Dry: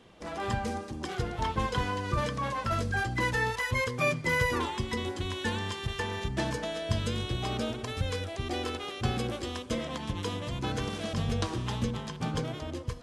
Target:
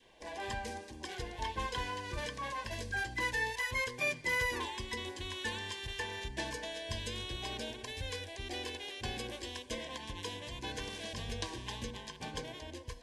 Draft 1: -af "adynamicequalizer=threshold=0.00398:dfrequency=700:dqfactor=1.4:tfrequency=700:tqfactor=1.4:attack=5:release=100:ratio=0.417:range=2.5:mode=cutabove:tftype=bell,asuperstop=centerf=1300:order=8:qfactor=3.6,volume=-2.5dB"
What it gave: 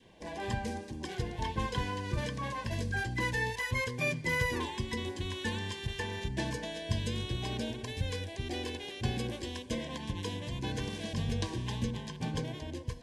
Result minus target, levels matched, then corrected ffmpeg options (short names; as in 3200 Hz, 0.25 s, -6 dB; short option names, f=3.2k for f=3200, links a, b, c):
125 Hz band +7.5 dB
-af "adynamicequalizer=threshold=0.00398:dfrequency=700:dqfactor=1.4:tfrequency=700:tqfactor=1.4:attack=5:release=100:ratio=0.417:range=2.5:mode=cutabove:tftype=bell,asuperstop=centerf=1300:order=8:qfactor=3.6,equalizer=f=150:w=0.67:g=-14.5,volume=-2.5dB"